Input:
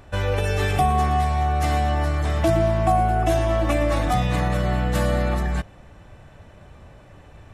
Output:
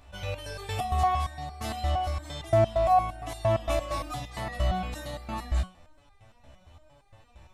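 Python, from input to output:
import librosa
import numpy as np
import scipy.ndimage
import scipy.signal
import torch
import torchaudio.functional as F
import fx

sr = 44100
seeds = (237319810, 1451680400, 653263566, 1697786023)

y = fx.graphic_eq_15(x, sr, hz=(160, 400, 1600, 4000), db=(-11, -11, -7, 3))
y = fx.resonator_held(y, sr, hz=8.7, low_hz=66.0, high_hz=400.0)
y = y * librosa.db_to_amplitude(4.5)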